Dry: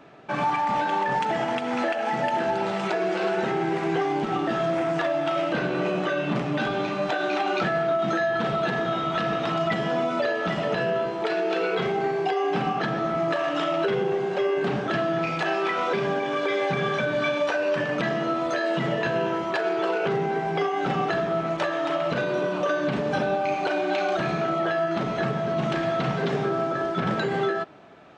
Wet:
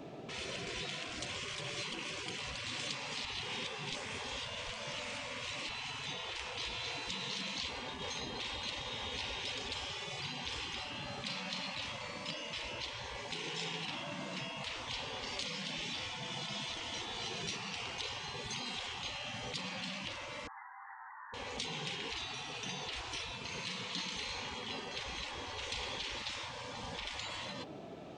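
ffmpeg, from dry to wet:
-filter_complex "[0:a]asettb=1/sr,asplit=3[s0][s1][s2];[s0]atrim=end=13.314[s3];[s1]atrim=start=13.31:end=14.41,asetpts=PTS-STARTPTS,afade=t=in:d=0.004:c=qsin,afade=t=out:st=1.096:d=0.004:c=qsin,lowshelf=f=320:g=-10[s4];[s2]atrim=start=14.406[s5];[s3][s4]acrossfade=d=0.004:c1=hsin:c2=qsin[s6];[s6][s5]acrossfade=d=0.004:c1=qsin:c2=hsin,asettb=1/sr,asplit=3[s7][s8][s9];[s7]atrim=end=20.474[s10];[s8]atrim=start=20.47:end=21.34,asetpts=PTS-STARTPTS,afade=t=in:d=0.004:c=qsin,afade=t=out:st=0.866:d=0.004:c=qsin,asuperpass=centerf=1300:order=20:qfactor=1.3[s11];[s9]atrim=start=21.336[s12];[s10][s11]acrossfade=d=0.004:c1=hsin:c2=qsin[s13];[s13][s12]acrossfade=d=0.004:c1=qsin:c2=hsin,asplit=3[s14][s15][s16];[s14]atrim=end=3.252[s17];[s15]atrim=start=3.248:end=5.692,asetpts=PTS-STARTPTS,areverse[s18];[s16]atrim=start=5.688[s19];[s17][s18]acrossfade=d=0.004:c1=hsin:c2=hsin[s20];[s20][s19]acrossfade=d=0.004:c1=hsin:c2=hsin,afftfilt=real='re*lt(hypot(re,im),0.0501)':imag='im*lt(hypot(re,im),0.0501)':win_size=1024:overlap=0.75,equalizer=f=1500:t=o:w=1.4:g=-13.5,volume=1.68"

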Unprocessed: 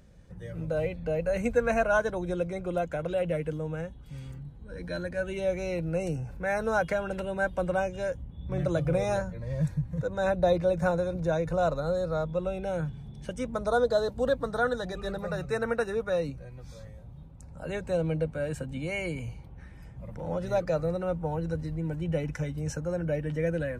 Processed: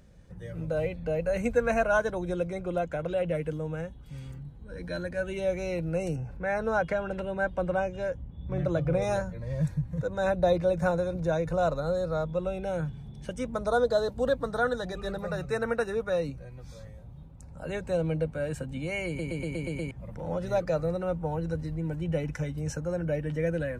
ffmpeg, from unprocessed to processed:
-filter_complex "[0:a]asettb=1/sr,asplit=3[s0][s1][s2];[s0]atrim=end=2.634[s3];[s1]atrim=start=2.63:end=3.35,asetpts=PTS-STARTPTS,afade=t=in:d=0.004:c=qsin,afade=t=out:st=0.716:d=0.004:c=qsin,highshelf=f=8200:g=-6.5[s4];[s2]atrim=start=3.346[s5];[s3][s4]acrossfade=d=0.004:c1=hsin:c2=qsin[s6];[s6][s5]acrossfade=d=0.004:c1=qsin:c2=hsin,asettb=1/sr,asplit=3[s7][s8][s9];[s7]atrim=end=6.164[s10];[s8]atrim=start=6.16:end=9.02,asetpts=PTS-STARTPTS,afade=t=in:d=0.004:c=qsin,afade=t=out:st=2.856:d=0.004:c=qsin,aemphasis=mode=reproduction:type=50kf[s11];[s9]atrim=start=9.016[s12];[s10][s11]acrossfade=d=0.004:c1=hsin:c2=qsin[s13];[s13][s12]acrossfade=d=0.004:c1=qsin:c2=hsin,asplit=8[s14][s15][s16][s17][s18][s19][s20][s21];[s14]atrim=end=19.192[s22];[s15]atrim=start=19.068:end=19.192[s23];[s16]atrim=start=19.068:end=19.192[s24];[s17]atrim=start=19.068:end=19.192[s25];[s18]atrim=start=19.068:end=19.192[s26];[s19]atrim=start=19.068:end=19.192[s27];[s20]atrim=start=19.068:end=19.192[s28];[s21]atrim=start=19.908[s29];[s22][s23]acrossfade=d=0.004:c1=hsin:c2=hsin[s30];[s30][s24]acrossfade=d=0.004:c1=hsin:c2=hsin[s31];[s31][s25]acrossfade=d=0.004:c1=hsin:c2=hsin[s32];[s32][s26]acrossfade=d=0.004:c1=hsin:c2=hsin[s33];[s33][s27]acrossfade=d=0.004:c1=hsin:c2=hsin[s34];[s34][s28]acrossfade=d=0.004:c1=hsin:c2=hsin[s35];[s35][s29]acrossfade=d=0.004:c1=hsin:c2=hsin"

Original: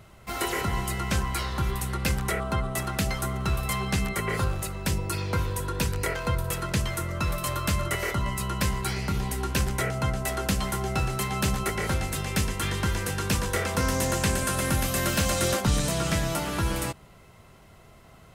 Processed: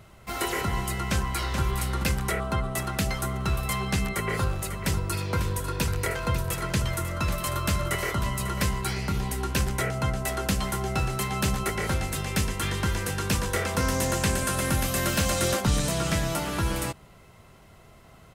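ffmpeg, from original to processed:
-filter_complex "[0:a]asplit=2[s0][s1];[s1]afade=t=in:st=0.99:d=0.01,afade=t=out:st=1.6:d=0.01,aecho=0:1:430|860|1290:0.473151|0.0946303|0.0189261[s2];[s0][s2]amix=inputs=2:normalize=0,asettb=1/sr,asplit=3[s3][s4][s5];[s3]atrim=end=4.124[s6];[s4]atrim=start=4.12:end=8.68,asetpts=PTS-STARTPTS,afade=t=in:d=0.004:c=qsin,afade=t=out:st=4.556:d=0.004:c=qsin,aecho=1:1:546:0.316,atrim=end_sample=201096[s7];[s5]atrim=start=8.676[s8];[s6][s7]acrossfade=d=0.004:c1=hsin:c2=qsin[s9];[s9][s8]acrossfade=d=0.004:c1=qsin:c2=hsin"

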